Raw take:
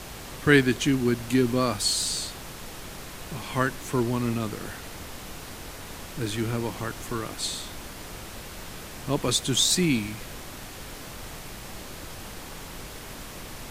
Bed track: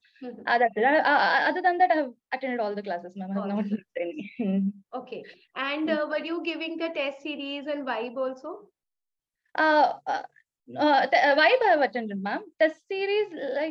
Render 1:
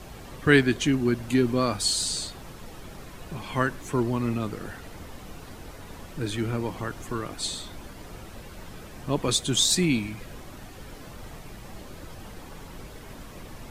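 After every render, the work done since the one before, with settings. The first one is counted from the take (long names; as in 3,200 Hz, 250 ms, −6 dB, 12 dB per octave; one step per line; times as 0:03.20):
broadband denoise 9 dB, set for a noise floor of −41 dBFS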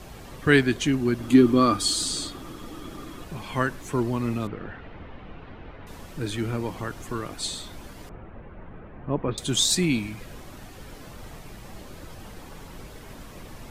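0:01.19–0:03.24: hollow resonant body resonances 300/1,200/3,300 Hz, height 13 dB, ringing for 40 ms
0:04.47–0:05.87: low-pass filter 3,000 Hz 24 dB per octave
0:08.09–0:09.38: Bessel low-pass filter 1,500 Hz, order 6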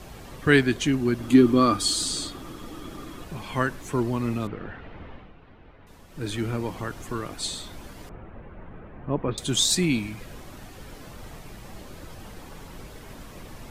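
0:05.12–0:06.29: duck −8.5 dB, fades 0.20 s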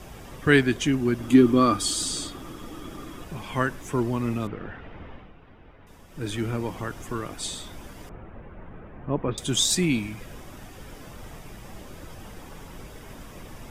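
notch filter 4,200 Hz, Q 8.3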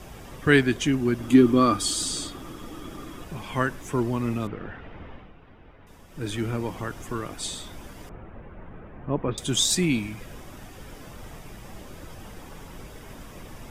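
no processing that can be heard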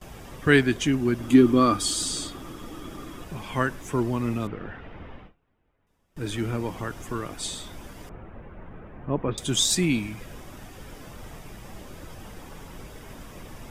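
noise gate with hold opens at −36 dBFS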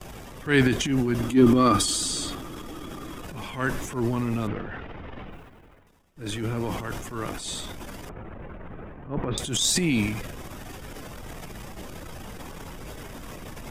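reversed playback
upward compression, threshold −33 dBFS
reversed playback
transient designer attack −11 dB, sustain +9 dB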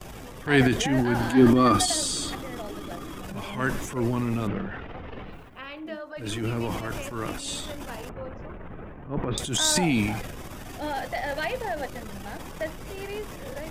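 mix in bed track −10.5 dB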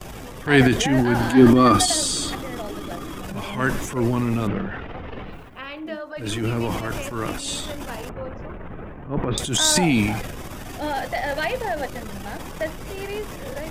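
level +4.5 dB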